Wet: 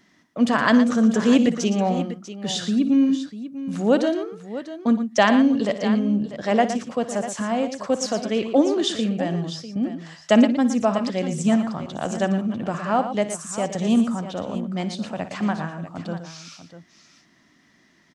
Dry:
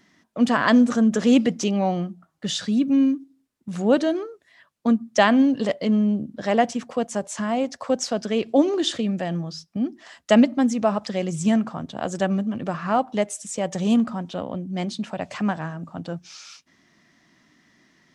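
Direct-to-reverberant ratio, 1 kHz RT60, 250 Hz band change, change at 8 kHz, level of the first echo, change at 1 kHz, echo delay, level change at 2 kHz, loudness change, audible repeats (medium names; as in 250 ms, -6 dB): no reverb, no reverb, +0.5 dB, +0.5 dB, -14.5 dB, +0.5 dB, 59 ms, +1.0 dB, +0.5 dB, 3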